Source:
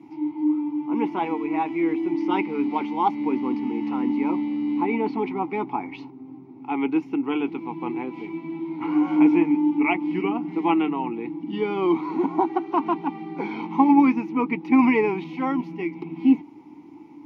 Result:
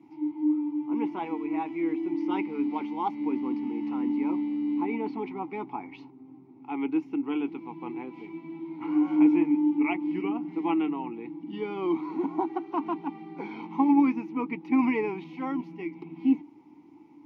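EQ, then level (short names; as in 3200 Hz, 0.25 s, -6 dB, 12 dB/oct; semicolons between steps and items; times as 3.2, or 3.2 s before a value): dynamic EQ 300 Hz, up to +5 dB, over -31 dBFS, Q 4.8; -8.0 dB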